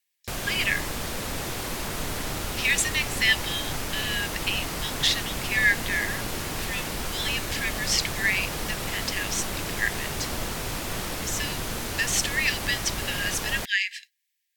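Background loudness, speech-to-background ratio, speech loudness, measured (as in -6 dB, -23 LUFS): -31.0 LUFS, 4.0 dB, -27.0 LUFS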